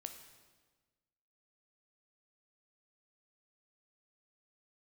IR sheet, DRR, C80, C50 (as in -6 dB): 6.0 dB, 10.0 dB, 8.0 dB